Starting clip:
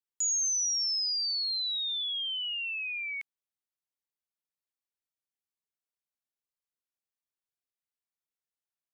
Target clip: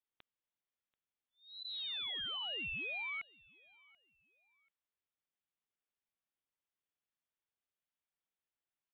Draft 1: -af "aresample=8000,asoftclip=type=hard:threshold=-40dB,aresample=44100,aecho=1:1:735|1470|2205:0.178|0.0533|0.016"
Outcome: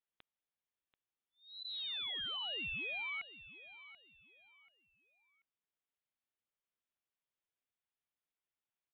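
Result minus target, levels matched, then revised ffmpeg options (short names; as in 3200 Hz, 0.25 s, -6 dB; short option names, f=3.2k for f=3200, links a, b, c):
echo-to-direct +10 dB
-af "aresample=8000,asoftclip=type=hard:threshold=-40dB,aresample=44100,aecho=1:1:735|1470:0.0562|0.0169"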